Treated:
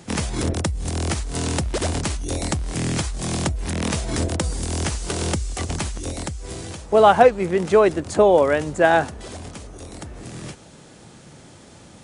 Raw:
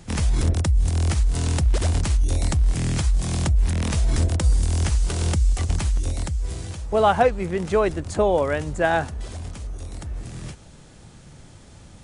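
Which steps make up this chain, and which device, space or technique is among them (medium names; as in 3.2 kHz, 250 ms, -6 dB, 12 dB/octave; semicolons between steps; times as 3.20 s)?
filter by subtraction (in parallel: low-pass 320 Hz 12 dB/octave + polarity flip); on the sum: trim +3.5 dB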